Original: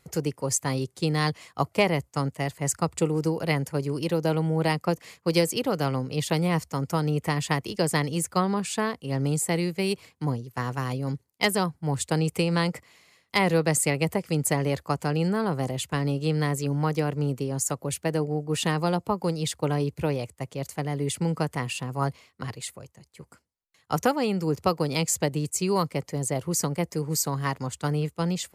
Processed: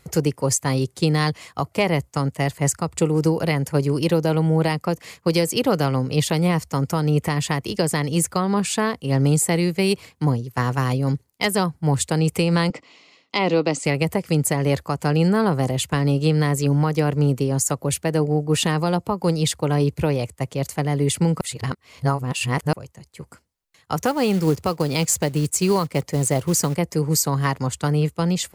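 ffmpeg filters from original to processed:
-filter_complex "[0:a]asettb=1/sr,asplit=3[s0][s1][s2];[s0]atrim=end=12.704[s3];[s1]atrim=start=12.7:end=13.85,asetpts=PTS-STARTPTS,afade=t=in:d=0.004:c=qsin,afade=t=out:st=1.146:d=0.004:c=qsin,highpass=230,equalizer=f=280:t=q:w=4:g=8,equalizer=f=1700:t=q:w=4:g=-10,equalizer=f=2800:t=q:w=4:g=4,lowpass=f=6000:w=0.5412,lowpass=f=6000:w=1.3066[s4];[s2]atrim=start=13.846[s5];[s3][s4]acrossfade=d=0.004:c1=hsin:c2=qsin[s6];[s6][s5]acrossfade=d=0.004:c1=qsin:c2=hsin,asettb=1/sr,asplit=3[s7][s8][s9];[s7]atrim=end=23.984[s10];[s8]atrim=start=23.98:end=26.75,asetpts=PTS-STARTPTS,afade=t=in:d=0.004:c=qsin,afade=t=out:st=2.766:d=0.004:c=qsin,acrusher=bits=5:mode=log:mix=0:aa=0.000001[s11];[s9]atrim=start=26.746[s12];[s10][s11]acrossfade=d=0.004:c1=hsin:c2=qsin[s13];[s13][s12]acrossfade=d=0.004:c1=qsin:c2=hsin,asplit=3[s14][s15][s16];[s14]atrim=end=21.412[s17];[s15]atrim=start=21.408:end=22.732,asetpts=PTS-STARTPTS,areverse[s18];[s16]atrim=start=22.728[s19];[s17][s18]acrossfade=d=0.004:c1=hsin:c2=hsin[s20];[s20][s19]acrossfade=d=0.004:c1=hsin:c2=hsin,lowshelf=f=80:g=6,alimiter=limit=0.158:level=0:latency=1:release=225,volume=2.24"

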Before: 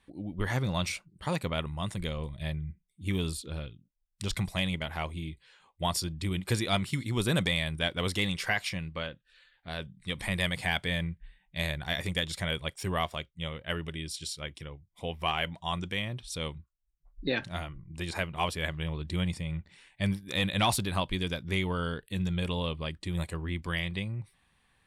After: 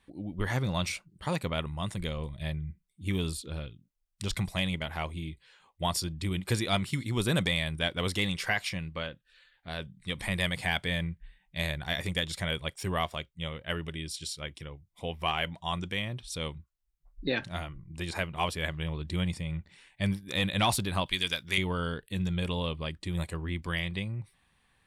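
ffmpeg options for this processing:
-filter_complex "[0:a]asettb=1/sr,asplit=3[s0][s1][s2];[s0]atrim=end=21.064[s3];[s1]atrim=start=21.06:end=21.58,asetpts=PTS-STARTPTS,afade=t=in:d=0.004:c=qsin,afade=t=out:st=0.516:d=0.004:c=qsin,tiltshelf=f=970:g=-8.5[s4];[s2]atrim=start=21.576[s5];[s3][s4]acrossfade=d=0.004:c1=hsin:c2=qsin[s6];[s6][s5]acrossfade=d=0.004:c1=qsin:c2=hsin"

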